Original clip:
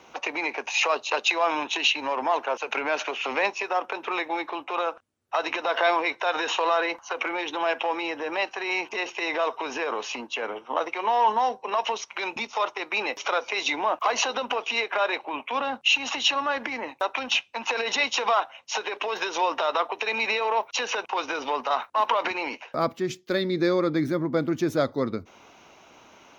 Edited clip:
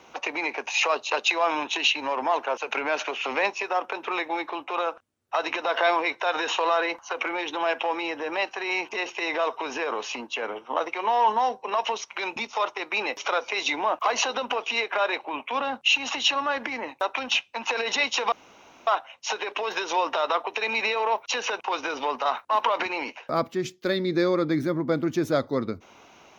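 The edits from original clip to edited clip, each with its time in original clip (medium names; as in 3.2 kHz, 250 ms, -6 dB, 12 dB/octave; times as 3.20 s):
18.32 s: insert room tone 0.55 s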